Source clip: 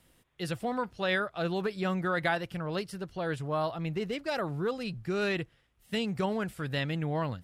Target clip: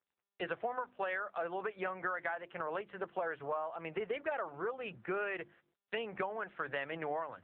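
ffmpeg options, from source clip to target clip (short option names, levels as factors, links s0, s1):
-filter_complex "[0:a]agate=range=0.0112:threshold=0.002:ratio=16:detection=peak,acrossover=split=450 2300:gain=0.0631 1 0.1[s0][s1][s2];[s0][s1][s2]amix=inputs=3:normalize=0,bandreject=f=50:t=h:w=6,bandreject=f=100:t=h:w=6,bandreject=f=150:t=h:w=6,bandreject=f=200:t=h:w=6,bandreject=f=250:t=h:w=6,bandreject=f=300:t=h:w=6,bandreject=f=350:t=h:w=6,acompressor=threshold=0.00794:ratio=16,volume=2.99" -ar 8000 -c:a libopencore_amrnb -b:a 7400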